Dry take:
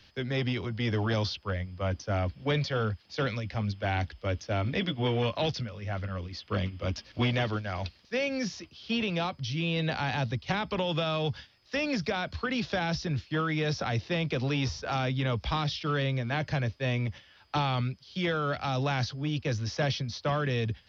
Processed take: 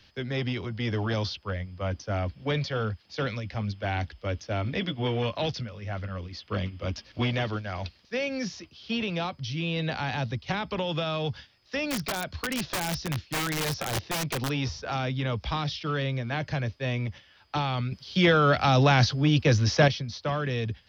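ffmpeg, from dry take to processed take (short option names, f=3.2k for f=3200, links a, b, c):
-filter_complex "[0:a]asettb=1/sr,asplit=3[a][b][c];[a]atrim=end=11.904[d];[b]atrim=start=11.9:end=14.5,asetpts=PTS-STARTPTS,afade=t=in:d=0.004:c=qsin,afade=t=out:st=2.596:d=0.004:c=qsin,aeval=exprs='(mod(14.1*val(0)+1,2)-1)/14.1':c=same[e];[c]atrim=start=14.496[f];[d][e]acrossfade=d=0.004:c1=hsin:c2=qsin[g];[g][f]acrossfade=d=0.004:c1=qsin:c2=hsin,asplit=3[h][i][j];[h]atrim=end=17.922[k];[i]atrim=start=17.918:end=19.882,asetpts=PTS-STARTPTS,volume=9dB[l];[j]atrim=start=19.878[m];[k][l]acrossfade=d=0.004:c1=hsin:c2=hsin[n];[n][m]acrossfade=d=0.004:c1=hsin:c2=hsin"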